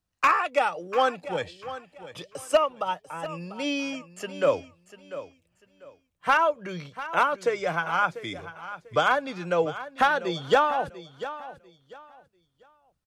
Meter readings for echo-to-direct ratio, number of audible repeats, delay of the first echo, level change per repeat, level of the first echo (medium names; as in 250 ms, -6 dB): -13.5 dB, 2, 694 ms, -12.0 dB, -14.0 dB